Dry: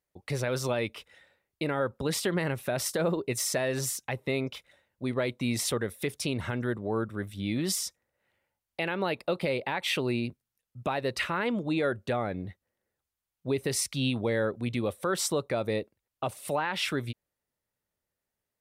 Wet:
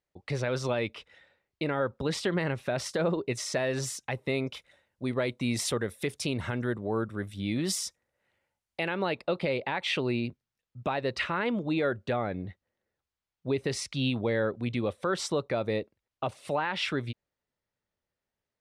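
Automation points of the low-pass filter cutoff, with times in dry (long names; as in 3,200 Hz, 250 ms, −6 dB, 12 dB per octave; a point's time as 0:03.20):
0:03.53 5,600 Hz
0:04.31 10,000 Hz
0:08.82 10,000 Hz
0:09.25 5,300 Hz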